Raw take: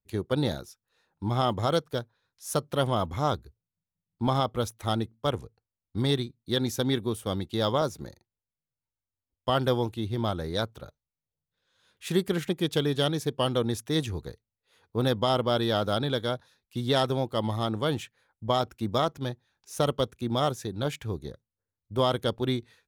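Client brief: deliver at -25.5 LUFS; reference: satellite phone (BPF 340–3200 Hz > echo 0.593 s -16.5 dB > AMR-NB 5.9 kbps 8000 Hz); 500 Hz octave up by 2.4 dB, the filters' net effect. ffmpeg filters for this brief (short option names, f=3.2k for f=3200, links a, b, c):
-af "highpass=340,lowpass=3.2k,equalizer=f=500:t=o:g=4,aecho=1:1:593:0.15,volume=4.5dB" -ar 8000 -c:a libopencore_amrnb -b:a 5900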